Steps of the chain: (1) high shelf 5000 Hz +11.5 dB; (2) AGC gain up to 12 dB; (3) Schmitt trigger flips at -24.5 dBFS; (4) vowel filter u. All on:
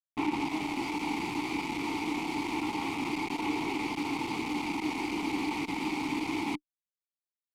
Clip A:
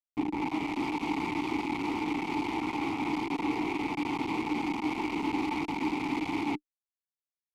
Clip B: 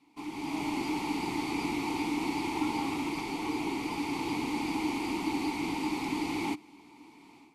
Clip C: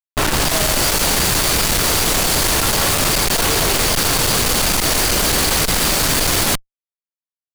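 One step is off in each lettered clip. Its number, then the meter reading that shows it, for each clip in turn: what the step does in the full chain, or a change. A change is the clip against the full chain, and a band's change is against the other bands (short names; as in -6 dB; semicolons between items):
1, 8 kHz band -7.5 dB; 3, 2 kHz band -2.5 dB; 4, 8 kHz band +16.0 dB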